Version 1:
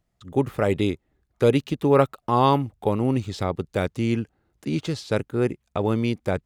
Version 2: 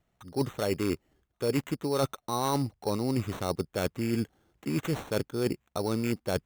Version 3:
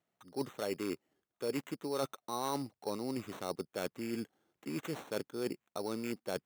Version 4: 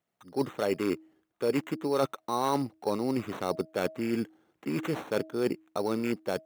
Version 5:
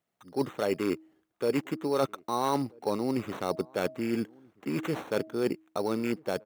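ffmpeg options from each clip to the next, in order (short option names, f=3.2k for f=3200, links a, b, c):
-af "lowshelf=f=120:g=-6,areverse,acompressor=threshold=-28dB:ratio=6,areverse,acrusher=samples=9:mix=1:aa=0.000001,volume=2.5dB"
-af "highpass=210,volume=-7dB"
-filter_complex "[0:a]bandreject=f=318.1:t=h:w=4,bandreject=f=636.2:t=h:w=4,acrossover=split=3300[a][b];[a]dynaudnorm=f=170:g=3:m=8.5dB[c];[b]aphaser=in_gain=1:out_gain=1:delay=1.7:decay=0.55:speed=1.5:type=triangular[d];[c][d]amix=inputs=2:normalize=0"
-filter_complex "[0:a]asplit=2[a][b];[b]adelay=1283,volume=-27dB,highshelf=f=4k:g=-28.9[c];[a][c]amix=inputs=2:normalize=0"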